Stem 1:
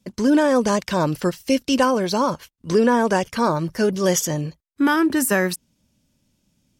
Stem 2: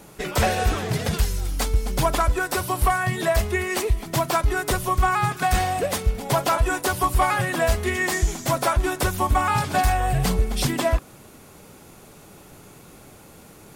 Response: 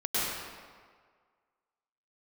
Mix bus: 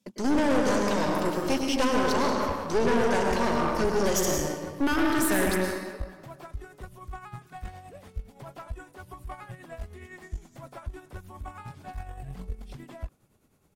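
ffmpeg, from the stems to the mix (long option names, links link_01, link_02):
-filter_complex "[0:a]highpass=220,lowshelf=frequency=330:gain=-4,volume=-4.5dB,asplit=2[link_01][link_02];[link_02]volume=-8dB[link_03];[1:a]acrossover=split=3000[link_04][link_05];[link_05]acompressor=threshold=-36dB:ratio=4:attack=1:release=60[link_06];[link_04][link_06]amix=inputs=2:normalize=0,tremolo=f=9.7:d=0.53,adelay=2100,volume=-16.5dB[link_07];[2:a]atrim=start_sample=2205[link_08];[link_03][link_08]afir=irnorm=-1:irlink=0[link_09];[link_01][link_07][link_09]amix=inputs=3:normalize=0,lowshelf=frequency=260:gain=7.5,aeval=exprs='(tanh(10*val(0)+0.75)-tanh(0.75))/10':channel_layout=same"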